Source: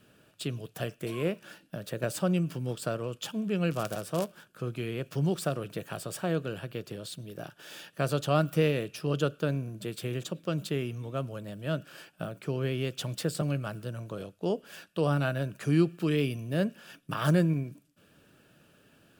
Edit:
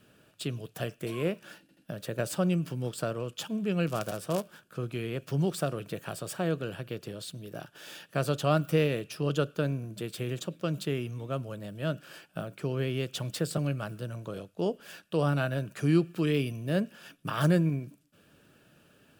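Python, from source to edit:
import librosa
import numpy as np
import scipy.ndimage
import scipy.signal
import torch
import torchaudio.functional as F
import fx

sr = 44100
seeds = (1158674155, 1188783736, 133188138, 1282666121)

y = fx.edit(x, sr, fx.stutter(start_s=1.61, slice_s=0.08, count=3), tone=tone)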